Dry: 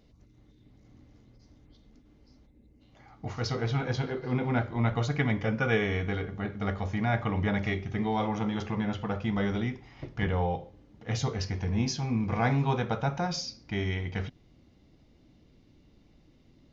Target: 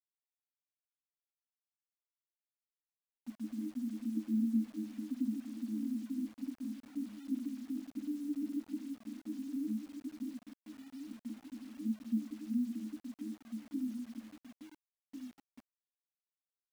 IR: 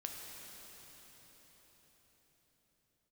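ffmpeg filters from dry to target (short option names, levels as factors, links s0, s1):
-filter_complex "[0:a]afftfilt=real='re*gte(hypot(re,im),0.0794)':imag='im*gte(hypot(re,im),0.0794)':win_size=1024:overlap=0.75,dynaudnorm=f=920:g=3:m=1.78,alimiter=limit=0.106:level=0:latency=1:release=362,acompressor=threshold=0.0316:ratio=10,afreqshift=-33,asuperpass=centerf=260:order=20:qfactor=2.6,asplit=2[s0][s1];[s1]adelay=1399,volume=0.355,highshelf=f=4000:g=-31.5[s2];[s0][s2]amix=inputs=2:normalize=0,acrusher=bits=10:mix=0:aa=0.000001,volume=2.37"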